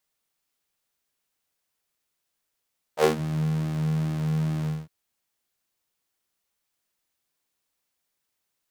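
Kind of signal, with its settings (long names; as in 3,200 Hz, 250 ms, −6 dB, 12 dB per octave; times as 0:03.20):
subtractive patch with pulse-width modulation D#3, detune 24 cents, sub 0 dB, filter highpass, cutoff 120 Hz, Q 3.8, filter envelope 2.5 octaves, filter decay 0.23 s, filter sustain 15%, attack 71 ms, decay 0.11 s, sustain −18.5 dB, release 0.22 s, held 1.69 s, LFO 2.4 Hz, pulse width 41%, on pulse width 10%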